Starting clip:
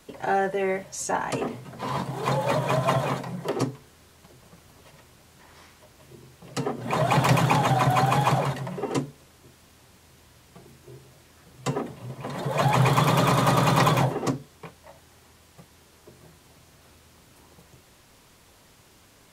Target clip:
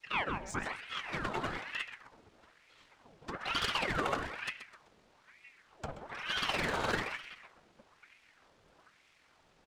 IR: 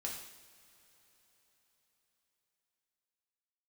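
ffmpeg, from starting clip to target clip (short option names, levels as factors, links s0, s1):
-filter_complex "[0:a]highpass=f=96:p=1,adynamicequalizer=threshold=0.0126:dfrequency=440:dqfactor=0.76:tfrequency=440:tqfactor=0.76:attack=5:release=100:ratio=0.375:range=2:mode=cutabove:tftype=bell,acrossover=split=270[s0][s1];[s0]acompressor=threshold=0.0141:ratio=5[s2];[s2][s1]amix=inputs=2:normalize=0,atempo=2,adynamicsmooth=sensitivity=4:basefreq=4900,asplit=2[s3][s4];[s4]asplit=4[s5][s6][s7][s8];[s5]adelay=128,afreqshift=-69,volume=0.282[s9];[s6]adelay=256,afreqshift=-138,volume=0.119[s10];[s7]adelay=384,afreqshift=-207,volume=0.0495[s11];[s8]adelay=512,afreqshift=-276,volume=0.0209[s12];[s9][s10][s11][s12]amix=inputs=4:normalize=0[s13];[s3][s13]amix=inputs=2:normalize=0,aeval=exprs='val(0)*sin(2*PI*1300*n/s+1300*0.8/1.1*sin(2*PI*1.1*n/s))':c=same,volume=0.531"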